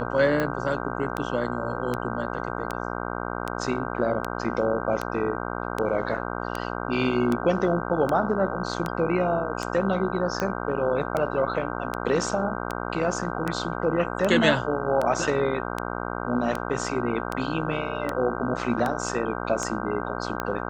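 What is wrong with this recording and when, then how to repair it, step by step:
mains buzz 60 Hz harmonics 26 −31 dBFS
scratch tick 78 rpm −13 dBFS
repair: click removal
hum removal 60 Hz, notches 26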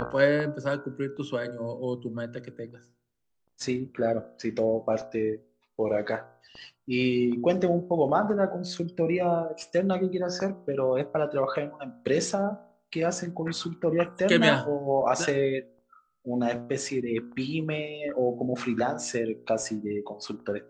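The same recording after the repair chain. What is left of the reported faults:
none of them is left

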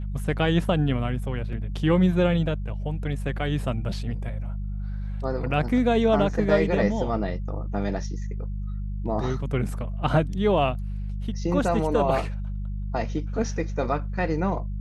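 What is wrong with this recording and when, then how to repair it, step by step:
mains hum 50 Hz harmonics 4 −30 dBFS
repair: hum removal 50 Hz, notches 4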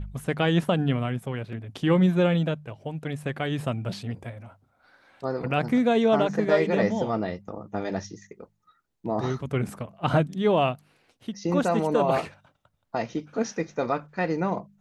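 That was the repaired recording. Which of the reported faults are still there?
none of them is left

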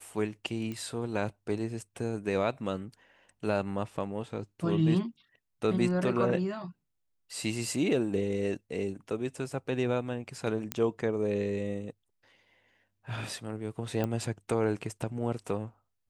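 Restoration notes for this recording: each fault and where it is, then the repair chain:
0:00.72: click −25 dBFS
0:10.72: click −13 dBFS
0:14.04: click −18 dBFS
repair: click removal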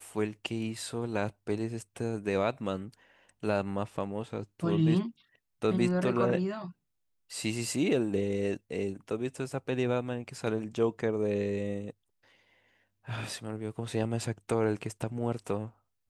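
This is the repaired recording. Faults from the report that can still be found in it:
none of them is left

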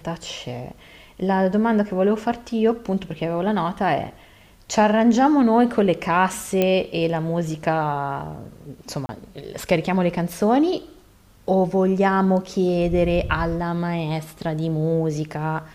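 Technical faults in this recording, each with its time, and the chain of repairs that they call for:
0:06.62: click −7 dBFS
0:09.06–0:09.09: drop-out 30 ms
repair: click removal
repair the gap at 0:09.06, 30 ms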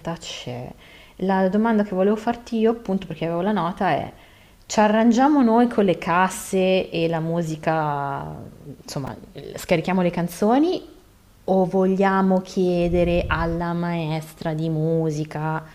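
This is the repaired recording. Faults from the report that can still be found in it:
none of them is left

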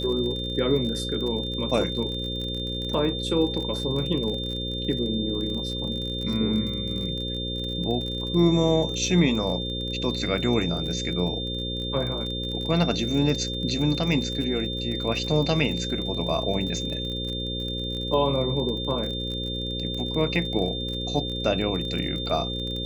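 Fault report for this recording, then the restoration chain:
mains buzz 60 Hz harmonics 9 −32 dBFS
surface crackle 37 per second −31 dBFS
whistle 3,600 Hz −31 dBFS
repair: click removal
hum removal 60 Hz, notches 9
notch filter 3,600 Hz, Q 30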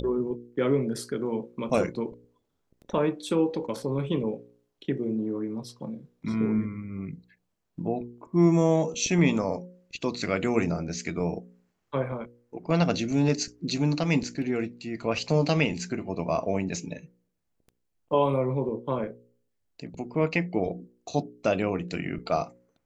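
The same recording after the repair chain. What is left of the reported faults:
none of them is left

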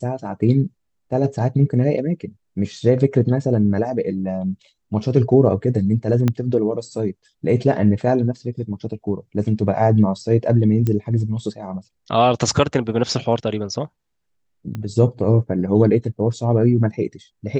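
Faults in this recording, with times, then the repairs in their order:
0:06.28: click −7 dBFS
0:10.87: click −11 dBFS
0:14.75: click −17 dBFS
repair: click removal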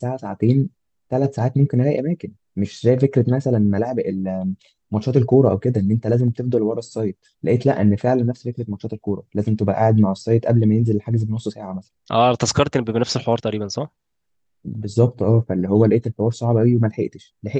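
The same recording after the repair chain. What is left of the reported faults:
0:06.28: click
0:14.75: click

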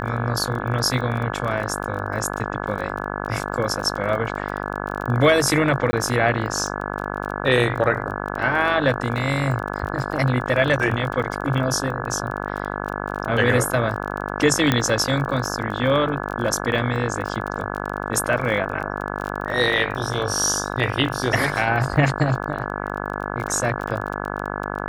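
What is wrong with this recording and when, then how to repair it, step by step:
mains buzz 50 Hz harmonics 34 −28 dBFS
surface crackle 27 per second −28 dBFS
0:05.91–0:05.93: drop-out 20 ms
0:14.72: click −4 dBFS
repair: click removal
hum removal 50 Hz, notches 34
repair the gap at 0:05.91, 20 ms

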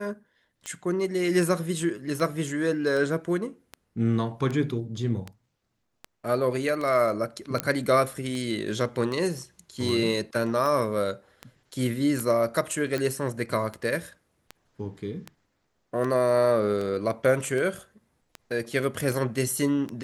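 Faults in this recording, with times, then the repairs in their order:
scratch tick 78 rpm −20 dBFS
0:07.60: click −9 dBFS
0:12.98: click −16 dBFS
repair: click removal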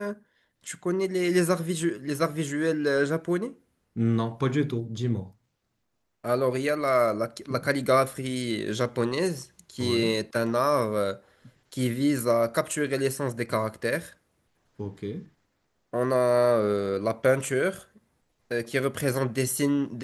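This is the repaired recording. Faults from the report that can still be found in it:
none of them is left

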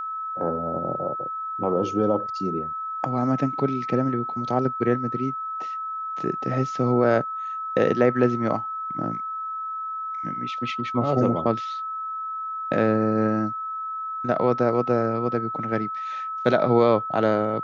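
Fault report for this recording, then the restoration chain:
whistle 1,300 Hz −28 dBFS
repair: notch filter 1,300 Hz, Q 30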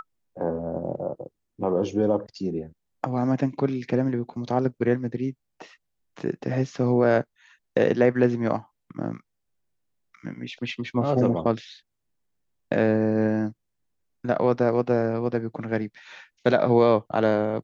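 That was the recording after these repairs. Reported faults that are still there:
none of them is left

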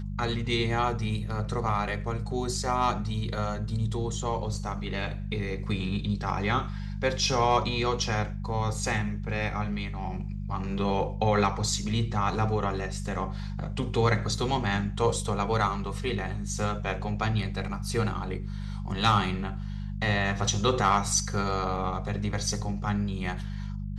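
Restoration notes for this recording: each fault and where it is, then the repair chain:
mains hum 50 Hz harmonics 4 −34 dBFS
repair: hum removal 50 Hz, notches 4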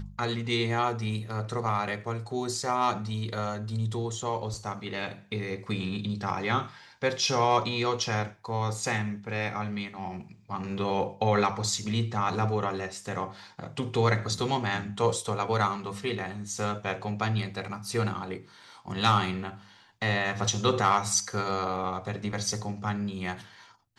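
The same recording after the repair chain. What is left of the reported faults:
none of them is left

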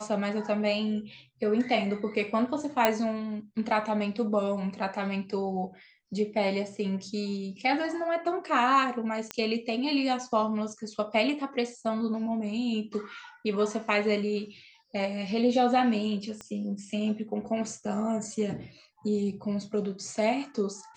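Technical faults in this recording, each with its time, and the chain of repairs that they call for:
0:02.85: click −7 dBFS
0:09.31: click −16 dBFS
0:16.41: click −25 dBFS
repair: click removal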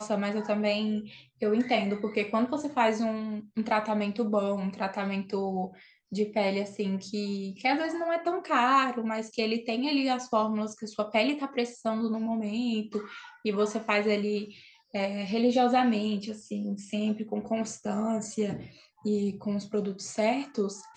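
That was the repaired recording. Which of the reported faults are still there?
0:16.41: click

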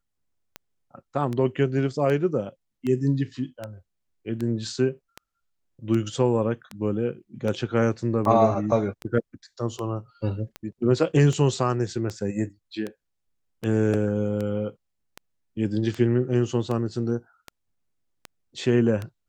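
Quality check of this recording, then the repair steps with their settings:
scratch tick 78 rpm −18 dBFS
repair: click removal

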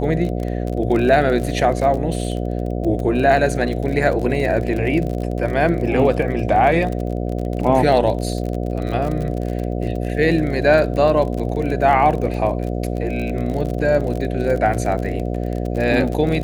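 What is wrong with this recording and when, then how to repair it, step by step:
mains buzz 60 Hz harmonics 12 −23 dBFS
surface crackle 40 per second −25 dBFS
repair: click removal
hum removal 60 Hz, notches 12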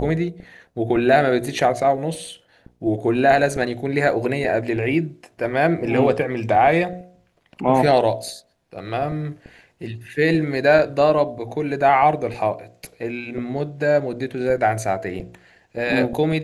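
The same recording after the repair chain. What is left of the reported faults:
none of them is left

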